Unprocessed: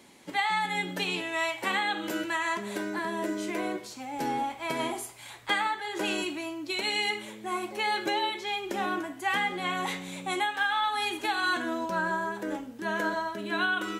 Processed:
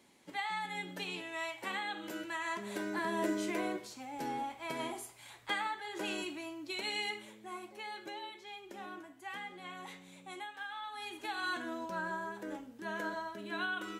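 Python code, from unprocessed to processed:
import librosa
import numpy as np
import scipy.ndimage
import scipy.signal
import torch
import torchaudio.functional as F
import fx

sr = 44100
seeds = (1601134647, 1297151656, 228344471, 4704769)

y = fx.gain(x, sr, db=fx.line((2.25, -10.0), (3.25, -1.5), (4.21, -8.0), (6.99, -8.0), (7.93, -16.0), (10.86, -16.0), (11.41, -9.0)))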